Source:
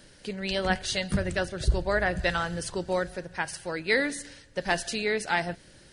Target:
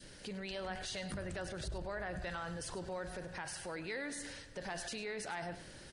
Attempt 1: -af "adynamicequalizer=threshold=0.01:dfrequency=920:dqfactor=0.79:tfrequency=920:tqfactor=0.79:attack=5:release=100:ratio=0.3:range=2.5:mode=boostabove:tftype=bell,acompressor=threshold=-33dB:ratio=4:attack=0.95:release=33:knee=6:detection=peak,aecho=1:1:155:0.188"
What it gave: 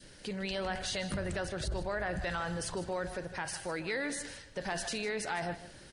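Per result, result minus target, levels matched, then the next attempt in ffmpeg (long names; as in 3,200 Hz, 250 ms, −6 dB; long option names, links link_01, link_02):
echo 53 ms late; downward compressor: peak gain reduction −6.5 dB
-af "adynamicequalizer=threshold=0.01:dfrequency=920:dqfactor=0.79:tfrequency=920:tqfactor=0.79:attack=5:release=100:ratio=0.3:range=2.5:mode=boostabove:tftype=bell,acompressor=threshold=-33dB:ratio=4:attack=0.95:release=33:knee=6:detection=peak,aecho=1:1:102:0.188"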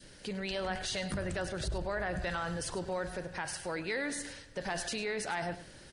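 downward compressor: peak gain reduction −6.5 dB
-af "adynamicequalizer=threshold=0.01:dfrequency=920:dqfactor=0.79:tfrequency=920:tqfactor=0.79:attack=5:release=100:ratio=0.3:range=2.5:mode=boostabove:tftype=bell,acompressor=threshold=-41.5dB:ratio=4:attack=0.95:release=33:knee=6:detection=peak,aecho=1:1:102:0.188"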